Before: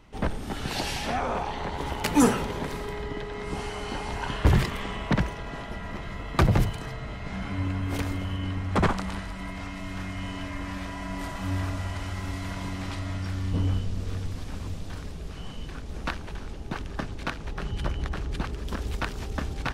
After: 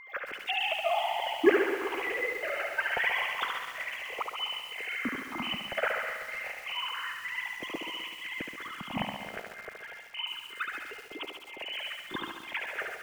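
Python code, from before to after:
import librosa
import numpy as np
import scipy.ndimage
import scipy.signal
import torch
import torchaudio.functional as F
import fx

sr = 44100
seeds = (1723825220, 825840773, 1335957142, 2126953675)

y = fx.sine_speech(x, sr)
y = fx.high_shelf(y, sr, hz=2400.0, db=9.5)
y = fx.quant_companded(y, sr, bits=8)
y = fx.phaser_stages(y, sr, stages=6, low_hz=250.0, high_hz=1600.0, hz=0.19, feedback_pct=20)
y = y + 10.0 ** (-44.0 / 20.0) * np.sin(2.0 * np.pi * 2100.0 * np.arange(len(y)) / sr)
y = fx.step_gate(y, sr, bpm=82, pattern='xxx.xx.x', floor_db=-60.0, edge_ms=4.5)
y = fx.stretch_grains(y, sr, factor=0.66, grain_ms=102.0)
y = fx.echo_thinned(y, sr, ms=71, feedback_pct=65, hz=260.0, wet_db=-4.5)
y = fx.echo_crushed(y, sr, ms=126, feedback_pct=80, bits=7, wet_db=-10.5)
y = y * 10.0 ** (-2.0 / 20.0)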